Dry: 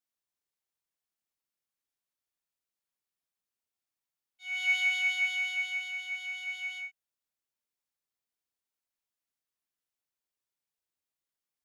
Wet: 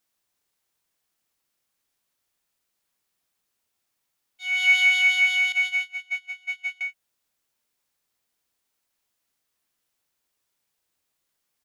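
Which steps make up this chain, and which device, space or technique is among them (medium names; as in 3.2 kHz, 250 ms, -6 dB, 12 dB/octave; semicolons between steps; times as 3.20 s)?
5.52–6.81 s: gate -35 dBFS, range -27 dB; doubling 21 ms -14 dB; parallel compression (in parallel at -4.5 dB: compression, threshold -46 dBFS, peak gain reduction 20.5 dB); on the sum: trim +8.5 dB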